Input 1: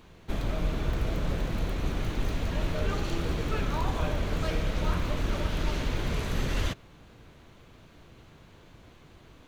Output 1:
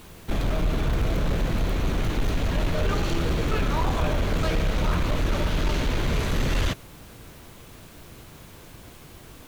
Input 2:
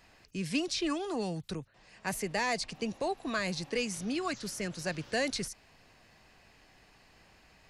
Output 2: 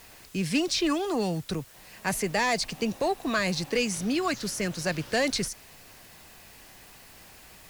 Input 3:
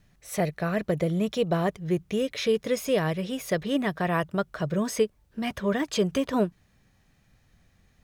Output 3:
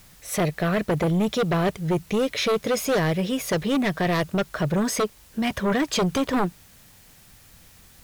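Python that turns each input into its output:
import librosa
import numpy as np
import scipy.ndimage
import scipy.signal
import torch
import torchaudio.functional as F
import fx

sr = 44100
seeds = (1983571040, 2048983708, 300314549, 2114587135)

y = fx.quant_dither(x, sr, seeds[0], bits=10, dither='triangular')
y = fx.fold_sine(y, sr, drive_db=9, ceiling_db=-11.5)
y = F.gain(torch.from_numpy(y), -6.0).numpy()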